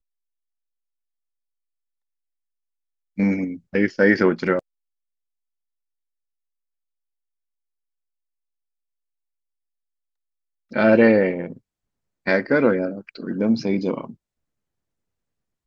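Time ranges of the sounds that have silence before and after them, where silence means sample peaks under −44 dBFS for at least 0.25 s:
0:03.18–0:04.59
0:10.71–0:11.58
0:12.26–0:14.14

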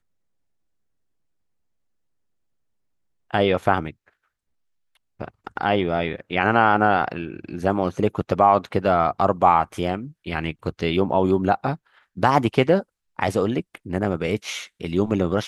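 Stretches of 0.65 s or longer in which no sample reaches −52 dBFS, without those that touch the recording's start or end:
0:04.09–0:04.95

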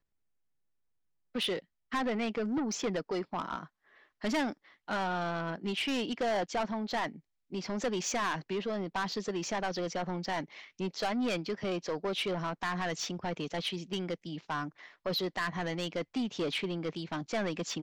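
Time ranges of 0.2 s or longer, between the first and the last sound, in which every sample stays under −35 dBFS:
0:01.59–0:01.92
0:03.63–0:04.24
0:04.52–0:04.89
0:07.08–0:07.53
0:10.43–0:10.80
0:14.68–0:15.06

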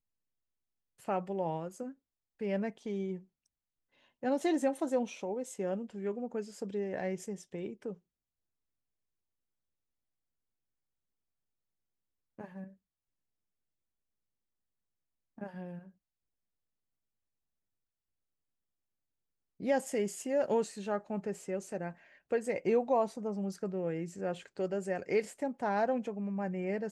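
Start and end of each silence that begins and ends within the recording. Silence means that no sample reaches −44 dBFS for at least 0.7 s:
0:03.19–0:04.23
0:07.94–0:12.39
0:12.68–0:15.38
0:15.79–0:19.60

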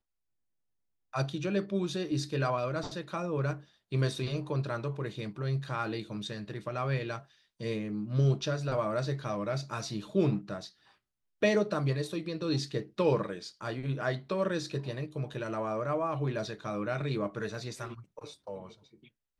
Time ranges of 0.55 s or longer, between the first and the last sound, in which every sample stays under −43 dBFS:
0:10.68–0:11.42

